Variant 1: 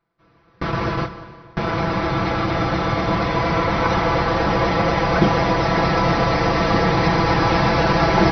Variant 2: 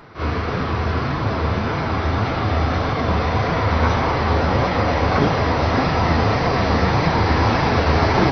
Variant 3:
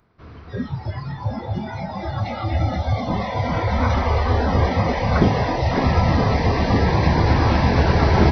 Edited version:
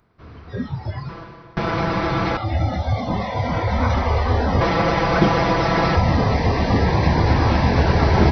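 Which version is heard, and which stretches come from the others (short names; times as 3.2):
3
1.09–2.37 from 1
4.61–5.96 from 1
not used: 2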